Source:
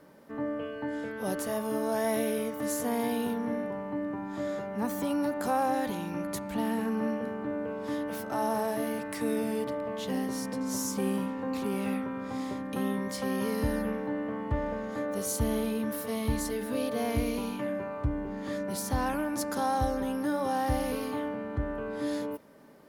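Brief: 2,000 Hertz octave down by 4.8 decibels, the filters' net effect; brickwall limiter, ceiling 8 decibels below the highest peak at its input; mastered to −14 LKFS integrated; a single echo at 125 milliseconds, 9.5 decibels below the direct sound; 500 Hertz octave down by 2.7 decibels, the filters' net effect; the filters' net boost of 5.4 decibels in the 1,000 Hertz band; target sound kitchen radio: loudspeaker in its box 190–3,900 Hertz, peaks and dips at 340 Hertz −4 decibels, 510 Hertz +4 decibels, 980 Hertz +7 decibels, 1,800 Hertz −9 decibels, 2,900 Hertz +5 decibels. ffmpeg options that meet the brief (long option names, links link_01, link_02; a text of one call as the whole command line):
ffmpeg -i in.wav -af "equalizer=frequency=500:width_type=o:gain=-7,equalizer=frequency=1000:width_type=o:gain=6,equalizer=frequency=2000:width_type=o:gain=-3.5,alimiter=level_in=1dB:limit=-24dB:level=0:latency=1,volume=-1dB,highpass=190,equalizer=frequency=340:width_type=q:width=4:gain=-4,equalizer=frequency=510:width_type=q:width=4:gain=4,equalizer=frequency=980:width_type=q:width=4:gain=7,equalizer=frequency=1800:width_type=q:width=4:gain=-9,equalizer=frequency=2900:width_type=q:width=4:gain=5,lowpass=frequency=3900:width=0.5412,lowpass=frequency=3900:width=1.3066,aecho=1:1:125:0.335,volume=20.5dB" out.wav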